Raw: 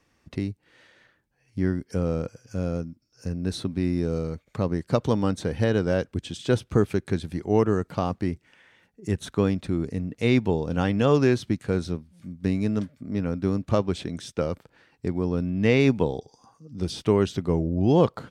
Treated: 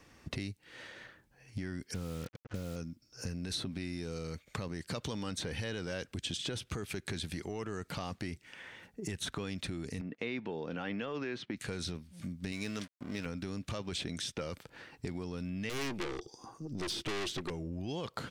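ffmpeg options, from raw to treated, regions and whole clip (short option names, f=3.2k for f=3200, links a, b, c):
-filter_complex "[0:a]asettb=1/sr,asplit=3[a][b][c];[a]atrim=end=1.944[d];[b]atrim=start=1.94:end=2.76,asetpts=PTS-STARTPTS,afade=t=in:d=0.004:c=qsin,afade=t=out:st=0.816:d=0.004:c=qsin,lowpass=1.2k,adynamicequalizer=threshold=0.00794:dfrequency=570:dqfactor=1.3:tfrequency=570:tqfactor=1.3:attack=5:release=100:ratio=0.375:range=3:mode=cutabove:tftype=bell,acrusher=bits=7:mix=0:aa=0.5[e];[c]atrim=start=2.756[f];[d][e]acrossfade=d=0.004:c1=hsin:c2=qsin[g];[g][f]acrossfade=d=0.004:c1=qsin:c2=hsin,asettb=1/sr,asplit=3[h][i][j];[h]atrim=end=10.014[k];[i]atrim=start=10.01:end=11.57,asetpts=PTS-STARTPTS,afade=t=in:d=0.004:c=qsin,afade=t=out:st=1.556:d=0.004:c=qsin,agate=range=-10dB:threshold=-43dB:ratio=16:release=100:detection=peak,highpass=210,lowpass=2.2k[l];[j]atrim=start=11.566[m];[k][l]acrossfade=d=0.004:c1=hsin:c2=qsin[n];[n][m]acrossfade=d=0.004:c1=qsin:c2=hsin,asettb=1/sr,asplit=3[o][p][q];[o]atrim=end=12.524[r];[p]atrim=start=12.52:end=13.26,asetpts=PTS-STARTPTS,afade=t=in:d=0.004:c=qsin,afade=t=out:st=0.736:d=0.004:c=qsin,aeval=exprs='sgn(val(0))*max(abs(val(0))-0.00376,0)':c=same,lowshelf=f=360:g=-9.5[s];[q]atrim=start=13.256[t];[r][s]acrossfade=d=0.004:c1=hsin:c2=qsin[u];[u][t]acrossfade=d=0.004:c1=qsin:c2=hsin,asettb=1/sr,asplit=3[v][w][x];[v]atrim=end=15.694[y];[w]atrim=start=15.69:end=17.5,asetpts=PTS-STARTPTS,afade=t=in:d=0.004:c=qsin,afade=t=out:st=1.806:d=0.004:c=qsin,equalizer=f=350:t=o:w=0.31:g=14.5,aeval=exprs='(tanh(28.2*val(0)+0.5)-tanh(0.5))/28.2':c=same[z];[x]atrim=start=17.496[aa];[y][z]acrossfade=d=0.004:c1=hsin:c2=qsin[ab];[ab][aa]acrossfade=d=0.004:c1=qsin:c2=hsin,acompressor=threshold=-22dB:ratio=6,alimiter=limit=-23.5dB:level=0:latency=1:release=10,acrossover=split=1800|3900[ac][ad][ae];[ac]acompressor=threshold=-46dB:ratio=4[af];[ad]acompressor=threshold=-47dB:ratio=4[ag];[ae]acompressor=threshold=-50dB:ratio=4[ah];[af][ag][ah]amix=inputs=3:normalize=0,volume=7dB"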